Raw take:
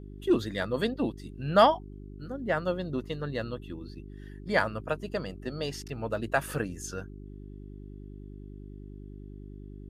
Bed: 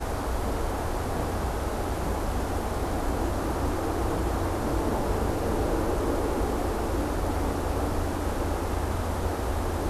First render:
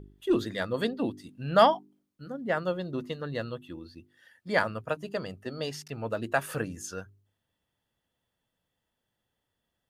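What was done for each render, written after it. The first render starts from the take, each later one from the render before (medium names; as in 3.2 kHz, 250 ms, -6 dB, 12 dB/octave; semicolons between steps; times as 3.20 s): de-hum 50 Hz, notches 8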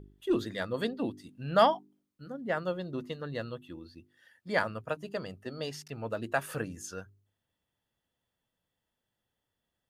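trim -3 dB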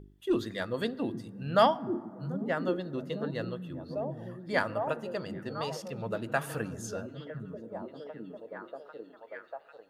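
repeats whose band climbs or falls 797 ms, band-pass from 160 Hz, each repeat 0.7 oct, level -0.5 dB; plate-style reverb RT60 2.1 s, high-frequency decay 0.35×, DRR 19 dB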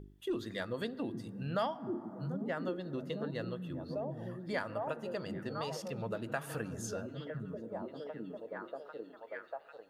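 compression 2.5:1, threshold -36 dBFS, peak gain reduction 12.5 dB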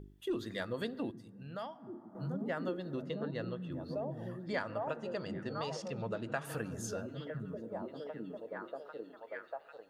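1.11–2.15 s: gain -9 dB; 3.02–3.72 s: distance through air 72 m; 4.45–6.45 s: low-pass 7.8 kHz 24 dB/octave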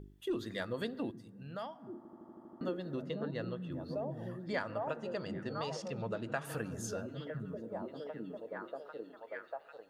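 1.97 s: stutter in place 0.08 s, 8 plays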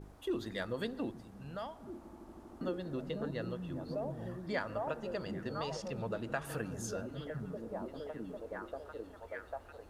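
add bed -30 dB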